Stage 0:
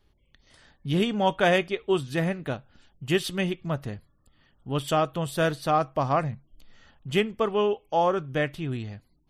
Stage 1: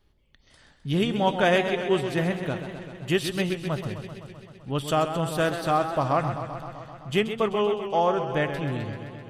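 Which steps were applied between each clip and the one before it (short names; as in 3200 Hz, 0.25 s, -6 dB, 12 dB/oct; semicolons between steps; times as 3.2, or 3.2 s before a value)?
warbling echo 0.129 s, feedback 74%, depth 105 cents, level -9.5 dB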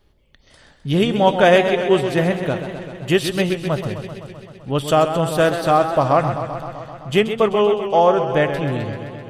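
bell 550 Hz +4 dB 0.9 oct; gain +6 dB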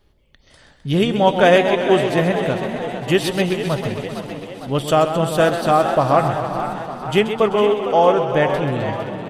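frequency-shifting echo 0.456 s, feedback 56%, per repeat +56 Hz, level -10.5 dB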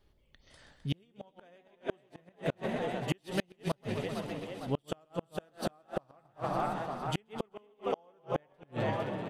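flipped gate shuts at -9 dBFS, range -38 dB; gain -9 dB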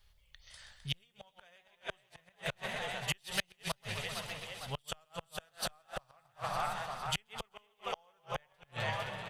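passive tone stack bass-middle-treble 10-0-10; gain +8.5 dB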